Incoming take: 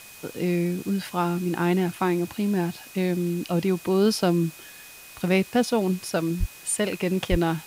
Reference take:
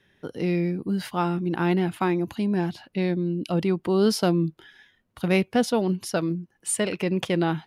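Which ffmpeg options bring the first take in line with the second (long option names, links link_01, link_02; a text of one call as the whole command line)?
ffmpeg -i in.wav -filter_complex "[0:a]bandreject=frequency=2500:width=30,asplit=3[link_01][link_02][link_03];[link_01]afade=type=out:start_time=6.39:duration=0.02[link_04];[link_02]highpass=frequency=140:width=0.5412,highpass=frequency=140:width=1.3066,afade=type=in:start_time=6.39:duration=0.02,afade=type=out:start_time=6.51:duration=0.02[link_05];[link_03]afade=type=in:start_time=6.51:duration=0.02[link_06];[link_04][link_05][link_06]amix=inputs=3:normalize=0,asplit=3[link_07][link_08][link_09];[link_07]afade=type=out:start_time=7.3:duration=0.02[link_10];[link_08]highpass=frequency=140:width=0.5412,highpass=frequency=140:width=1.3066,afade=type=in:start_time=7.3:duration=0.02,afade=type=out:start_time=7.42:duration=0.02[link_11];[link_09]afade=type=in:start_time=7.42:duration=0.02[link_12];[link_10][link_11][link_12]amix=inputs=3:normalize=0,afwtdn=0.0056" out.wav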